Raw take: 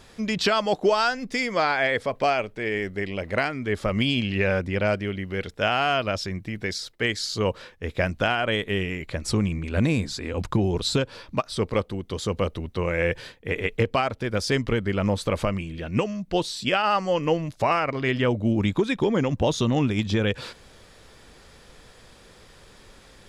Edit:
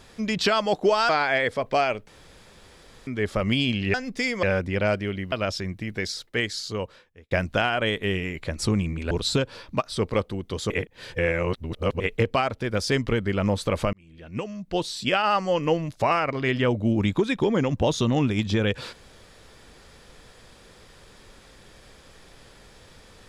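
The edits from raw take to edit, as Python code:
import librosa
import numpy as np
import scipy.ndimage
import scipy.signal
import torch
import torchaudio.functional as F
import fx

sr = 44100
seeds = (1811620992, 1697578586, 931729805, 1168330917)

y = fx.edit(x, sr, fx.move(start_s=1.09, length_s=0.49, to_s=4.43),
    fx.room_tone_fill(start_s=2.57, length_s=0.99),
    fx.cut(start_s=5.32, length_s=0.66),
    fx.fade_out_span(start_s=6.96, length_s=1.01),
    fx.cut(start_s=9.77, length_s=0.94),
    fx.reverse_span(start_s=12.3, length_s=1.3),
    fx.fade_in_span(start_s=15.53, length_s=1.07), tone=tone)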